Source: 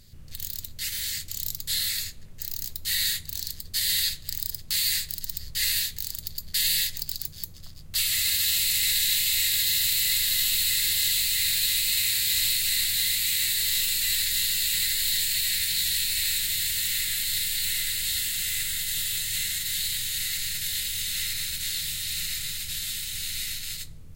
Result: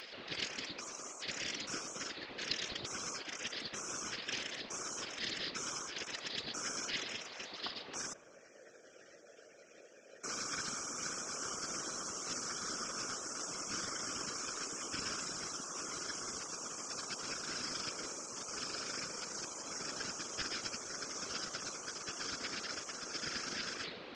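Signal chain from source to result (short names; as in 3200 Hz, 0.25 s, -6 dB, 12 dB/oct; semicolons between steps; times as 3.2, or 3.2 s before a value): steep low-pass 4400 Hz 36 dB/oct; spectral gate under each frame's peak -30 dB weak; upward compressor, threshold -59 dBFS; 8.13–10.24 vowel filter e; whisperiser; analogue delay 0.111 s, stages 2048, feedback 68%, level -17.5 dB; gain +15.5 dB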